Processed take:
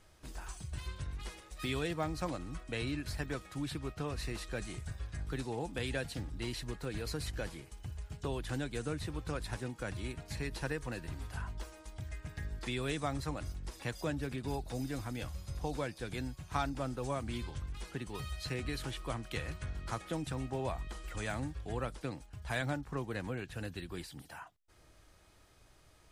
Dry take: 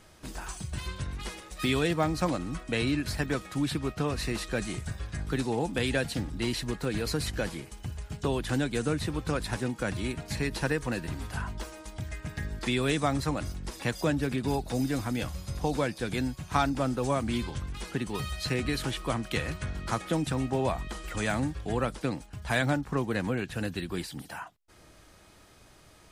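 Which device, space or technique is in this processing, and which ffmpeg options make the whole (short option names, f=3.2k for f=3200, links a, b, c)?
low shelf boost with a cut just above: -af "lowshelf=f=90:g=6.5,equalizer=f=210:t=o:w=0.82:g=-4.5,volume=-8.5dB"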